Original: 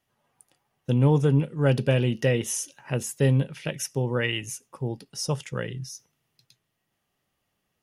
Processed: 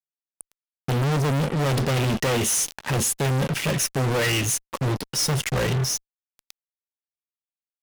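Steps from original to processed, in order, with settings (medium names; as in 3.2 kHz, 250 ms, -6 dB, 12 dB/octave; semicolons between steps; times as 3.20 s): fuzz box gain 46 dB, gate -45 dBFS; trim -7.5 dB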